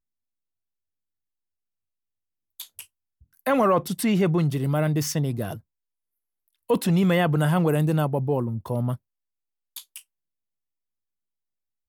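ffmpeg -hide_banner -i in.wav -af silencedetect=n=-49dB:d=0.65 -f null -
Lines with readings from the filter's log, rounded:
silence_start: 0.00
silence_end: 2.60 | silence_duration: 2.60
silence_start: 5.60
silence_end: 6.48 | silence_duration: 0.88
silence_start: 8.96
silence_end: 9.76 | silence_duration: 0.80
silence_start: 10.02
silence_end: 11.88 | silence_duration: 1.86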